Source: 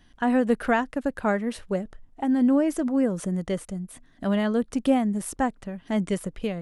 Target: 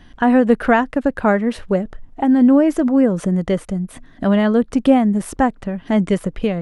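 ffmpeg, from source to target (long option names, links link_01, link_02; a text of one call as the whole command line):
ffmpeg -i in.wav -filter_complex "[0:a]highshelf=frequency=5100:gain=-12,asplit=2[link_01][link_02];[link_02]acompressor=threshold=-36dB:ratio=6,volume=-1.5dB[link_03];[link_01][link_03]amix=inputs=2:normalize=0,volume=7.5dB" out.wav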